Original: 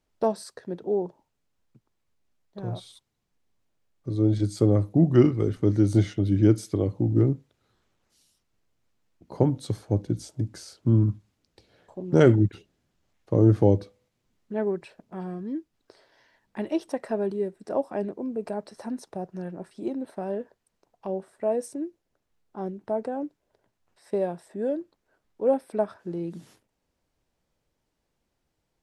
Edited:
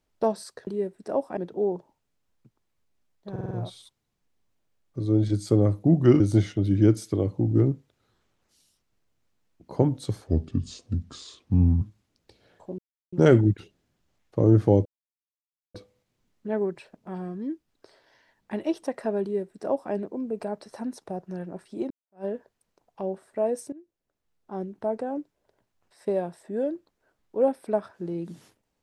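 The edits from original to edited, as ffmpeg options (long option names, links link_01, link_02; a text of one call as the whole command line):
ffmpeg -i in.wav -filter_complex "[0:a]asplit=14[link_01][link_02][link_03][link_04][link_05][link_06][link_07][link_08][link_09][link_10][link_11][link_12][link_13][link_14];[link_01]atrim=end=0.672[link_15];[link_02]atrim=start=17.278:end=17.982[link_16];[link_03]atrim=start=0.668:end=2.662[link_17];[link_04]atrim=start=2.608:end=2.662[link_18];[link_05]atrim=start=2.608:end=2.662[link_19];[link_06]atrim=start=2.608:end=2.662[link_20];[link_07]atrim=start=2.608:end=5.302[link_21];[link_08]atrim=start=5.808:end=9.884[link_22];[link_09]atrim=start=9.88:end=11.1,asetpts=PTS-STARTPTS,asetrate=34839,aresample=44100[link_23];[link_10]atrim=start=11.096:end=12.07,asetpts=PTS-STARTPTS,afade=type=out:start_time=0.97:duration=0.004:curve=hsin,apad=pad_dur=0.34[link_24];[link_11]atrim=start=12.07:end=13.8,asetpts=PTS-STARTPTS,afade=type=in:duration=0.004:curve=hsin,afade=type=out:start_time=1.726:duration=0.004:curve=hsin,apad=pad_dur=0.89[link_25];[link_12]atrim=start=13.8:end=19.96,asetpts=PTS-STARTPTS,afade=type=in:duration=0.004:curve=hsin,afade=type=out:start_time=6.156:duration=0.004:curve=hsin[link_26];[link_13]atrim=start=19.96:end=21.78,asetpts=PTS-STARTPTS,afade=type=in:duration=0.34:curve=exp,afade=type=out:start_time=1.816:duration=0.004:curve=hsin:silence=0.125893[link_27];[link_14]atrim=start=21.78,asetpts=PTS-STARTPTS,afade=type=in:duration=0.91:silence=0.125893[link_28];[link_15][link_16]acrossfade=duration=0.004:curve1=hsin:curve2=hsin[link_29];[link_29][link_17]acrossfade=duration=0.004:curve1=hsin:curve2=hsin[link_30];[link_30][link_18]acrossfade=duration=0.004:curve1=hsin:curve2=hsin[link_31];[link_31][link_19]acrossfade=duration=0.004:curve1=hsin:curve2=hsin[link_32];[link_32][link_20]acrossfade=duration=0.004:curve1=hsin:curve2=hsin[link_33];[link_33][link_21]acrossfade=duration=0.004:curve1=hsin:curve2=hsin[link_34];[link_34][link_22]acrossfade=duration=0.004:curve1=hsin:curve2=hsin[link_35];[link_35][link_23]acrossfade=duration=0.004:curve1=hsin:curve2=hsin[link_36];[link_24][link_25][link_26][link_27][link_28]concat=n=5:v=0:a=1[link_37];[link_36][link_37]acrossfade=duration=0.004:curve1=hsin:curve2=hsin" out.wav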